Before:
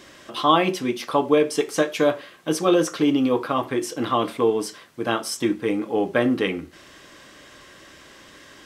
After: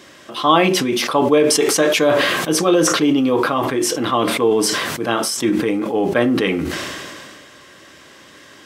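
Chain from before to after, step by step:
high-pass filter 80 Hz
level that may fall only so fast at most 26 dB per second
level +3 dB

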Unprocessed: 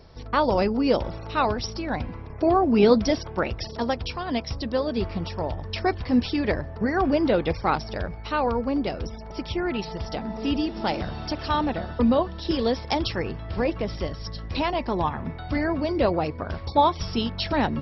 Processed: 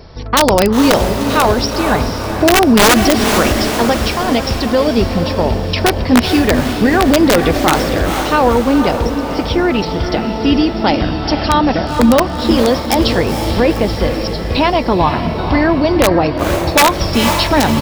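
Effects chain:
downsampling to 16,000 Hz
wrap-around overflow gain 12 dB
feedback delay with all-pass diffusion 482 ms, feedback 56%, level −8 dB
boost into a limiter +13.5 dB
level −1 dB

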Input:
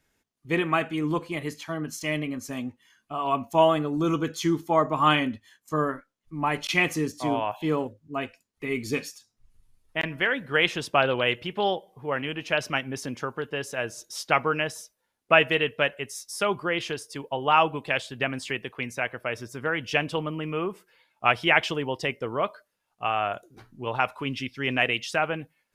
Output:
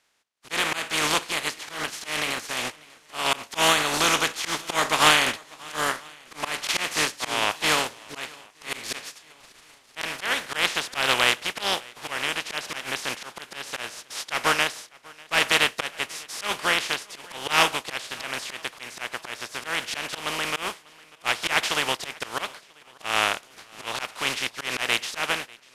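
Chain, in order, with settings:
compressing power law on the bin magnitudes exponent 0.26
Bessel low-pass filter 9,900 Hz, order 8
mid-hump overdrive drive 12 dB, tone 4,600 Hz, clips at 0 dBFS
volume swells 158 ms
on a send: feedback echo with a long and a short gap by turns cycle 990 ms, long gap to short 1.5 to 1, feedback 38%, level −24 dB

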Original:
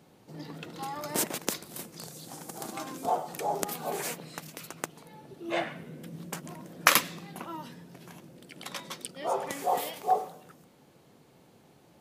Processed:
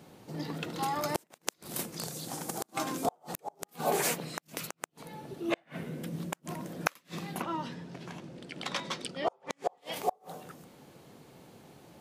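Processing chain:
0:07.42–0:09.92: low-pass filter 5,800 Hz 12 dB per octave
gate with flip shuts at −21 dBFS, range −39 dB
level +5 dB

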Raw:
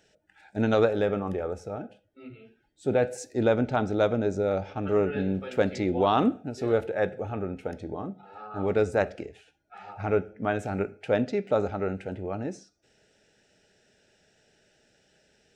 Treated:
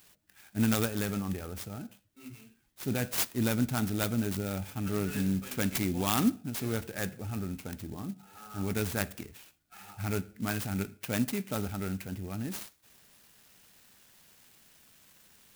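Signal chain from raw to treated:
drawn EQ curve 230 Hz 0 dB, 510 Hz −16 dB, 5,700 Hz +13 dB
converter with an unsteady clock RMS 0.064 ms

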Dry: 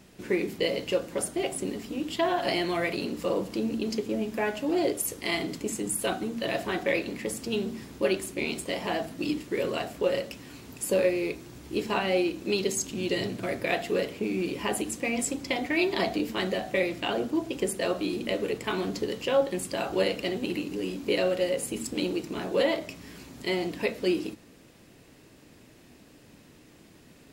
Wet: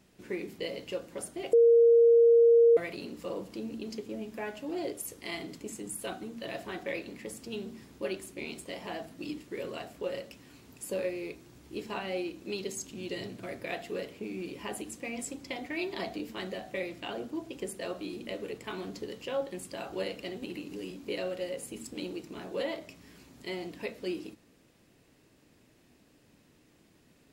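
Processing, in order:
0:01.53–0:02.77: beep over 466 Hz −7.5 dBFS
0:20.42–0:20.91: multiband upward and downward compressor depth 70%
level −9 dB

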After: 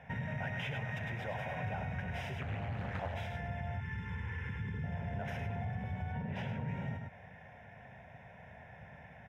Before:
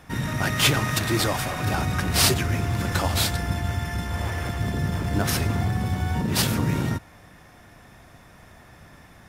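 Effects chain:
0:06.12–0:06.68: parametric band 12,000 Hz −13.5 dB 1.5 octaves
single-tap delay 102 ms −9 dB
soft clipping −13 dBFS, distortion −20 dB
0:03.80–0:04.84: Chebyshev band-stop filter 430–1,000 Hz, order 2
downward compressor 6 to 1, threshold −31 dBFS, peak gain reduction 12.5 dB
high-pass filter 100 Hz 12 dB per octave
high-frequency loss of the air 260 metres
phaser with its sweep stopped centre 1,200 Hz, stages 6
0:02.41–0:03.14: highs frequency-modulated by the lows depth 0.53 ms

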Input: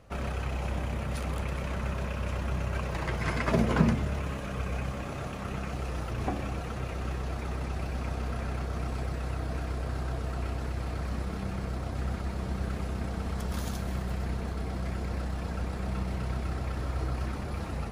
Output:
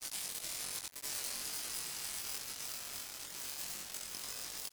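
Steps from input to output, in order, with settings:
high-pass filter 1,400 Hz 12 dB per octave
spectral tilt +4 dB per octave
compressor whose output falls as the input rises −41 dBFS, ratio −0.5
bit reduction 6 bits
change of speed 3.79×
granular cloud, pitch spread up and down by 0 semitones
double-tracking delay 21 ms −2 dB
level +4 dB

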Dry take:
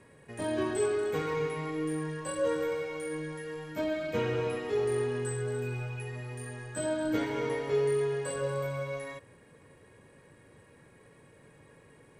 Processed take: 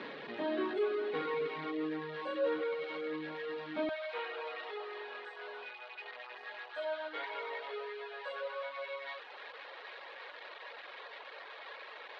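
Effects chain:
converter with a step at zero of −33 dBFS
high-pass filter 220 Hz 24 dB per octave, from 0:03.89 580 Hz
reverb reduction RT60 0.64 s
elliptic low-pass filter 4,000 Hz, stop band 70 dB
level −3.5 dB

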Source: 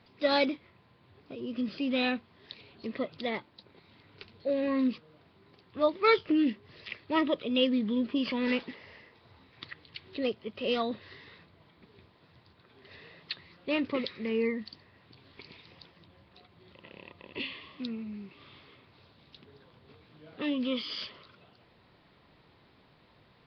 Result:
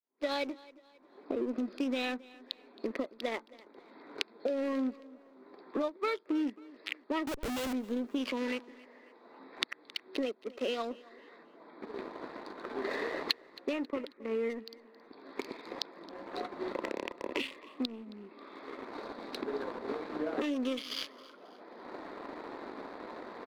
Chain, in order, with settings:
adaptive Wiener filter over 15 samples
camcorder AGC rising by 23 dB per second
Butterworth high-pass 250 Hz 36 dB per octave
downward expander −51 dBFS
0:13.73–0:14.50: low-pass filter 2,200 Hz 12 dB per octave
leveller curve on the samples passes 1
downward compressor, threshold −20 dBFS, peak gain reduction 14 dB
0:07.27–0:07.73: comparator with hysteresis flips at −36.5 dBFS
repeating echo 270 ms, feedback 42%, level −21 dB
level −8 dB

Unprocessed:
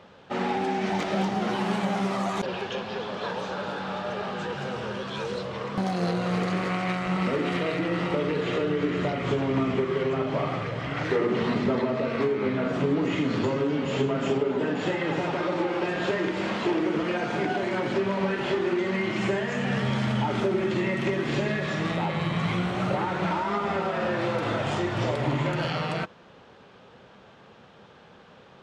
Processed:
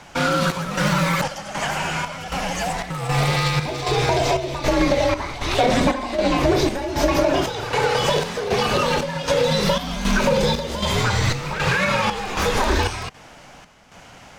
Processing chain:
square-wave tremolo 0.65 Hz, depth 60%, duty 65%
change of speed 1.99×
frequency shifter −220 Hz
level +7.5 dB

